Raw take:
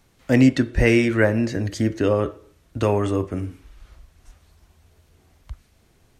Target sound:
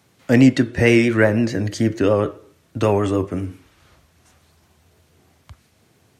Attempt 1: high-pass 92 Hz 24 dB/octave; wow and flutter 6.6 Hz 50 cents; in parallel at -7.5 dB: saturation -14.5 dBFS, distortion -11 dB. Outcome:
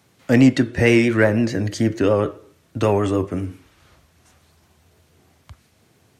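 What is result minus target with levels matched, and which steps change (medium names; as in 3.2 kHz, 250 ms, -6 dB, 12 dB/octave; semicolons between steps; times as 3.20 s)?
saturation: distortion +9 dB
change: saturation -7 dBFS, distortion -21 dB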